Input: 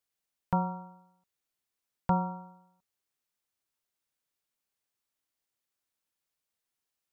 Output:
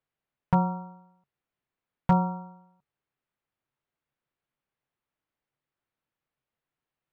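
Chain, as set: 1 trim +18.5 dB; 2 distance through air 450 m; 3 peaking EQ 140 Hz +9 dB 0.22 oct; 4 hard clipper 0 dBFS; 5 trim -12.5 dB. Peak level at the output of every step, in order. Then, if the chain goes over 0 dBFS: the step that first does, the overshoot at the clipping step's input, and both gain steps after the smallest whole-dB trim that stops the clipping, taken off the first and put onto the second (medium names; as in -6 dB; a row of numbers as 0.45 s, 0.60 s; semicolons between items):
+4.5 dBFS, +3.0 dBFS, +4.5 dBFS, 0.0 dBFS, -12.5 dBFS; step 1, 4.5 dB; step 1 +13.5 dB, step 5 -7.5 dB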